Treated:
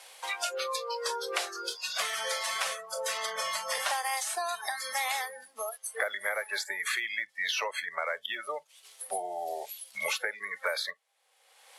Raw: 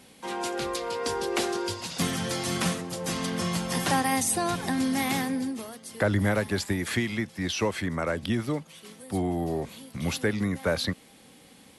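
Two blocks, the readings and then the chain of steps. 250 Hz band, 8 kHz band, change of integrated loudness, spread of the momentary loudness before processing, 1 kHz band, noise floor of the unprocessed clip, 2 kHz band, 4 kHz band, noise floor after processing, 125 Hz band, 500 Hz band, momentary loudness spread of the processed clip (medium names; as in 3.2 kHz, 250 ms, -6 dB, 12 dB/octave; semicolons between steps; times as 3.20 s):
under -30 dB, -2.5 dB, -4.0 dB, 9 LU, -2.5 dB, -54 dBFS, +1.0 dB, -0.5 dB, -67 dBFS, under -40 dB, -6.5 dB, 7 LU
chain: CVSD coder 64 kbps; spectral noise reduction 26 dB; inverse Chebyshev high-pass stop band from 290 Hz, stop band 40 dB; three bands compressed up and down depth 100%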